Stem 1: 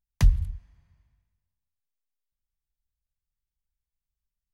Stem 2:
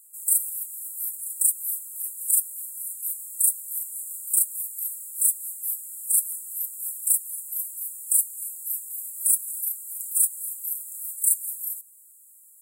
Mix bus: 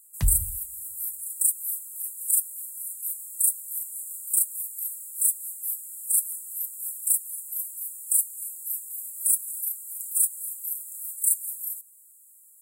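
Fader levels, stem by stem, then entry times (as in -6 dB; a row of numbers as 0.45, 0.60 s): -5.0, -1.5 dB; 0.00, 0.00 s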